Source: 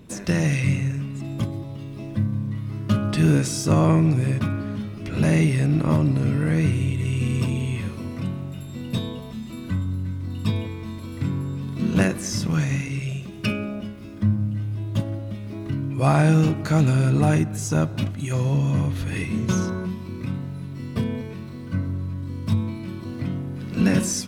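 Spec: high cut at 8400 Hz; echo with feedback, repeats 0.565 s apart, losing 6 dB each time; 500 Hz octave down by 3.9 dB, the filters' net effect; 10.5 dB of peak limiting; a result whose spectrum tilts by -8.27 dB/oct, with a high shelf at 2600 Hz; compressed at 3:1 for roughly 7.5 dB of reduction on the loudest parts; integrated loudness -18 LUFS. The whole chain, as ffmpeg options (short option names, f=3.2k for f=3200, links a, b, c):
-af "lowpass=8.4k,equalizer=f=500:t=o:g=-5,highshelf=f=2.6k:g=-5.5,acompressor=threshold=-25dB:ratio=3,alimiter=level_in=1.5dB:limit=-24dB:level=0:latency=1,volume=-1.5dB,aecho=1:1:565|1130|1695|2260|2825|3390:0.501|0.251|0.125|0.0626|0.0313|0.0157,volume=14dB"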